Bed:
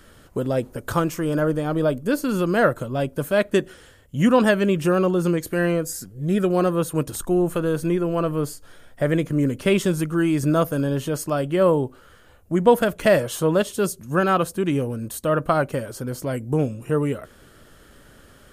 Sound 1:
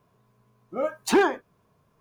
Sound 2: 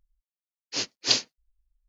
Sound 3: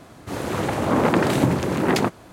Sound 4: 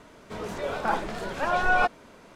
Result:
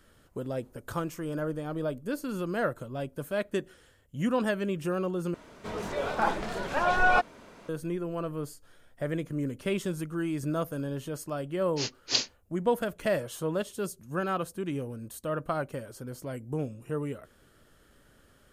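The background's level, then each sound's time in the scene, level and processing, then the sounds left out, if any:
bed -11 dB
5.34 replace with 4 -0.5 dB
11.04 add 2 -4.5 dB
not used: 1, 3

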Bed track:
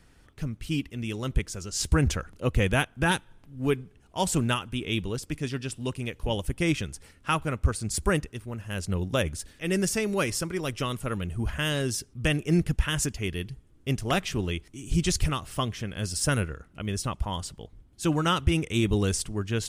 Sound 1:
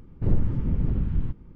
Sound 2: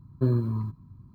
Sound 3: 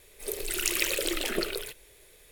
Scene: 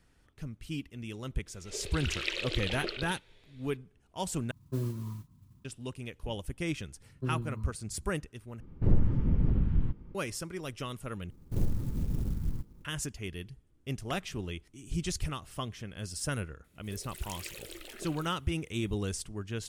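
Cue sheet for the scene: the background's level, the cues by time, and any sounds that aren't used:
bed track -8.5 dB
1.46 add 3 -7.5 dB + synth low-pass 3700 Hz, resonance Q 1.8
4.51 replace with 2 -9.5 dB + modulation noise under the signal 22 dB
7.01 add 2 -10 dB + bell 1900 Hz -5.5 dB 3 oct
8.6 replace with 1 -2 dB
11.3 replace with 1 -7.5 dB + clock jitter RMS 0.067 ms
16.64 add 3 -16.5 dB

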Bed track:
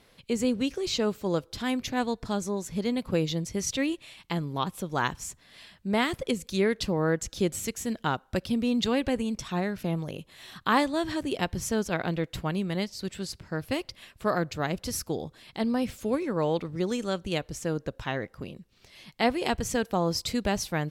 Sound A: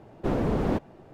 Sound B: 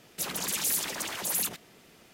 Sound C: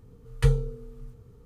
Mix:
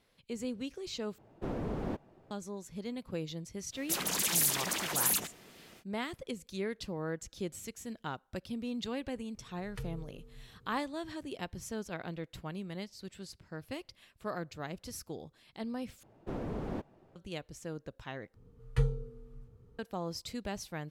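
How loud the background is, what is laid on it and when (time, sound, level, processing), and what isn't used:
bed track -11.5 dB
1.18 replace with A -10.5 dB
3.71 add B, fades 0.05 s
9.35 add C -10 dB + compressor 3:1, threshold -30 dBFS
16.03 replace with A -12 dB
18.34 replace with C -7.5 dB + high shelf 4900 Hz -8 dB

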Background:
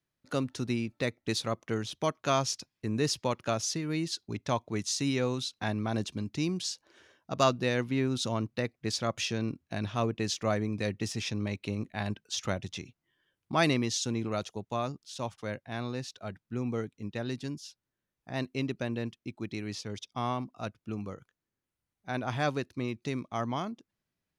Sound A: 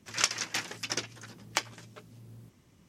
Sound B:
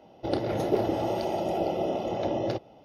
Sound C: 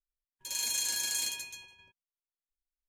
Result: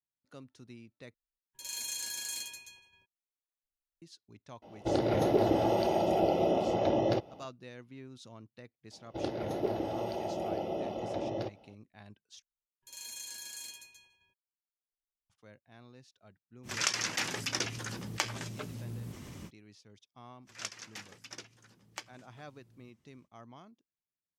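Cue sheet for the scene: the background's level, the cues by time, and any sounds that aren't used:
background -19.5 dB
1.14 replace with C -6 dB
4.62 add B -14 dB + maximiser +14.5 dB
8.91 add B -7 dB
12.42 replace with C -12 dB
16.63 add A -4.5 dB, fades 0.05 s + fast leveller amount 50%
20.41 add A -13.5 dB, fades 0.05 s

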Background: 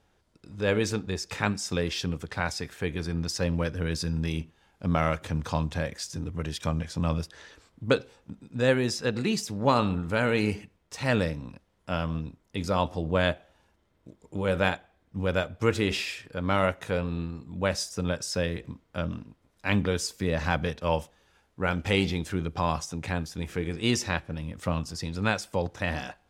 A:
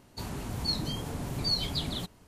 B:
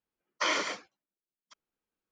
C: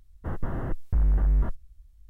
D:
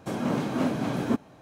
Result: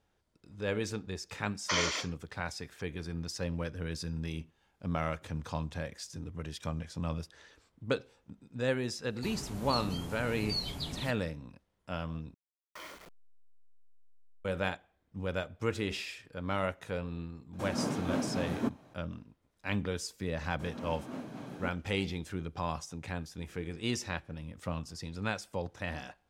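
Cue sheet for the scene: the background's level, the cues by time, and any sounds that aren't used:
background -8 dB
1.28 add B -4.5 dB + high shelf 4100 Hz +10.5 dB
9.05 add A -6 dB
12.34 replace with B -18 dB + level-crossing sampler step -28.5 dBFS
17.53 add D -6.5 dB
20.53 add D -15.5 dB
not used: C

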